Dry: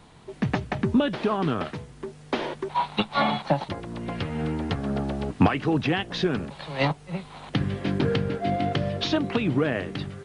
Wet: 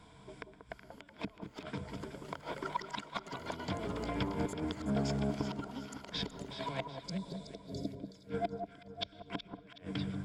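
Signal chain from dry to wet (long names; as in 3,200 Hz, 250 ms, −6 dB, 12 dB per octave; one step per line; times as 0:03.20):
notch filter 400 Hz, Q 12
gate with flip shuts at −17 dBFS, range −35 dB
EQ curve with evenly spaced ripples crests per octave 1.7, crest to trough 10 dB
delay with pitch and tempo change per echo 708 ms, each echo +6 semitones, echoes 2, each echo −6 dB
healed spectral selection 0:06.92–0:07.91, 690–3,400 Hz
delay that swaps between a low-pass and a high-pass 186 ms, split 1,200 Hz, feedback 63%, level −6 dB
on a send at −22 dB: convolution reverb RT60 0.95 s, pre-delay 80 ms
on the sum: level −7 dB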